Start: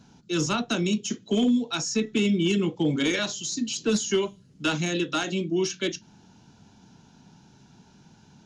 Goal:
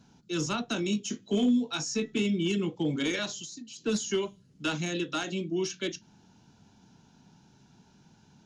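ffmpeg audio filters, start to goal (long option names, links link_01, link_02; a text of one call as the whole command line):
ffmpeg -i in.wav -filter_complex "[0:a]asettb=1/sr,asplit=3[link_01][link_02][link_03];[link_01]atrim=end=0.744[link_04];[link_02]atrim=start=0.74:end=2.22,asetpts=PTS-STARTPTS,afade=type=in:duration=0.004:curve=qsin,afade=type=out:start_time=1.476:duration=0.004:curve=qsin,asplit=2[link_05][link_06];[link_06]adelay=20,volume=-7dB[link_07];[link_05][link_07]amix=inputs=2:normalize=0,atrim=end_sample=65268[link_08];[link_03]atrim=start=2.216[link_09];[link_04][link_08]acrossfade=duration=0.004:curve1=hsin:curve2=qsin[link_10];[link_10][link_09]acrossfade=duration=0.004:curve1=qsin:curve2=hsin,asettb=1/sr,asplit=3[link_11][link_12][link_13];[link_11]atrim=end=3.444[link_14];[link_12]atrim=start=3.44:end=3.86,asetpts=PTS-STARTPTS,afade=type=in:duration=0.004:curve=qsin,afade=type=out:start_time=0.416:duration=0.004:curve=qsin,acompressor=threshold=-37dB:ratio=6[link_15];[link_13]atrim=start=3.856[link_16];[link_14][link_15]acrossfade=duration=0.004:curve1=hsin:curve2=qsin[link_17];[link_17][link_16]acrossfade=duration=0.004:curve1=qsin:curve2=hsin,volume=-5dB" out.wav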